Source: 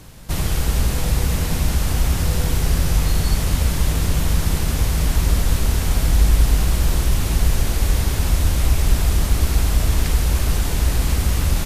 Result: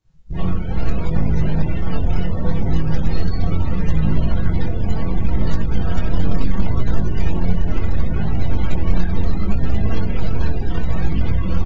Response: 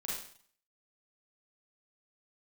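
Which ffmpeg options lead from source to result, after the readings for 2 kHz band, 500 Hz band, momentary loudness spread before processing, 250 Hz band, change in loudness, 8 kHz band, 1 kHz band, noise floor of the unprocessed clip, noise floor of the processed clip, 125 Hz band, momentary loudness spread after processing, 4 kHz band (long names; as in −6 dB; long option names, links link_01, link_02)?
−5.0 dB, +1.0 dB, 2 LU, +4.0 dB, −2.5 dB, below −25 dB, −2.0 dB, −23 dBFS, −20 dBFS, −1.0 dB, 3 LU, −12.0 dB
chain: -filter_complex "[0:a]aeval=exprs='0.668*(cos(1*acos(clip(val(0)/0.668,-1,1)))-cos(1*PI/2))+0.188*(cos(2*acos(clip(val(0)/0.668,-1,1)))-cos(2*PI/2))+0.0531*(cos(4*acos(clip(val(0)/0.668,-1,1)))-cos(4*PI/2))+0.188*(cos(5*acos(clip(val(0)/0.668,-1,1)))-cos(5*PI/2))+0.266*(cos(6*acos(clip(val(0)/0.668,-1,1)))-cos(6*PI/2))':channel_layout=same,acrossover=split=4100[link_01][link_02];[link_02]alimiter=limit=-19.5dB:level=0:latency=1:release=158[link_03];[link_01][link_03]amix=inputs=2:normalize=0[link_04];[1:a]atrim=start_sample=2205,afade=type=out:start_time=0.15:duration=0.01,atrim=end_sample=7056[link_05];[link_04][link_05]afir=irnorm=-1:irlink=0,aresample=16000,acrusher=bits=5:mode=log:mix=0:aa=0.000001,aresample=44100,flanger=delay=19:depth=3.9:speed=0.72,afftdn=noise_reduction=29:noise_floor=-22,volume=-4.5dB"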